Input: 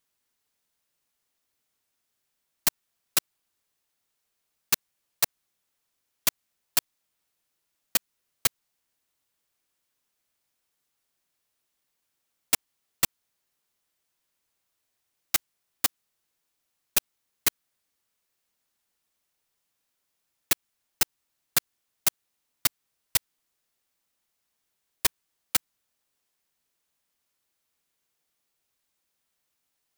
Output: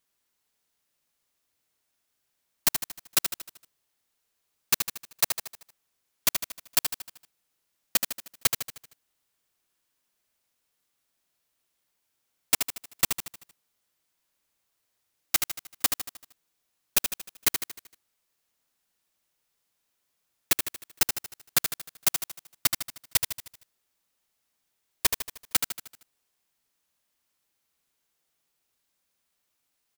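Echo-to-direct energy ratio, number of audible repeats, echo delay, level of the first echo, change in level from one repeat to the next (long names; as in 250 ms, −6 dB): −5.5 dB, 5, 77 ms, −6.5 dB, −6.0 dB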